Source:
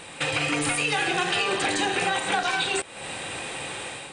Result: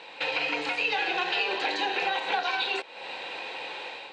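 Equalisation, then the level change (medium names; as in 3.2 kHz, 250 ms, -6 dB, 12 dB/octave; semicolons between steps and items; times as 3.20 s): distance through air 140 m; cabinet simulation 390–7000 Hz, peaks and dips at 480 Hz +4 dB, 930 Hz +7 dB, 2.6 kHz +5 dB, 4.2 kHz +9 dB; band-stop 1.2 kHz, Q 8.3; -4.0 dB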